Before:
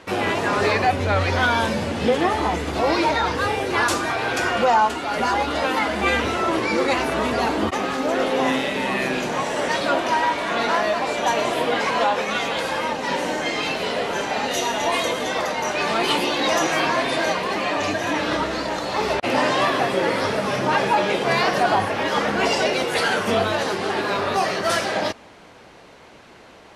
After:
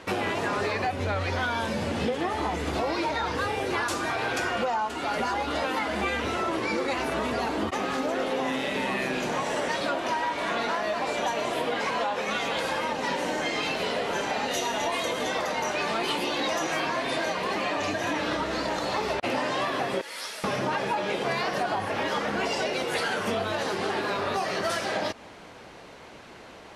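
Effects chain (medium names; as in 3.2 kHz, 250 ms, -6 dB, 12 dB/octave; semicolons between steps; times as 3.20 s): 20.01–20.44 s: differentiator; compression, threshold -25 dBFS, peak gain reduction 11.5 dB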